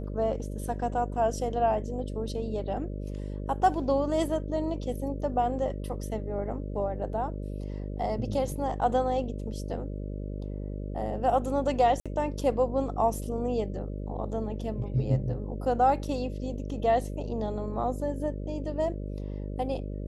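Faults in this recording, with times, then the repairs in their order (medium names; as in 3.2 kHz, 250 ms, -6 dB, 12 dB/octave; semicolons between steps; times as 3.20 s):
buzz 50 Hz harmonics 12 -35 dBFS
12.00–12.06 s: dropout 56 ms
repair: de-hum 50 Hz, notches 12; interpolate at 12.00 s, 56 ms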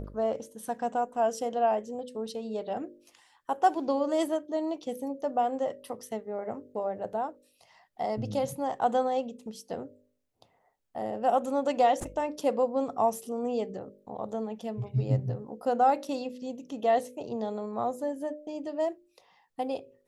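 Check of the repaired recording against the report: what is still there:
nothing left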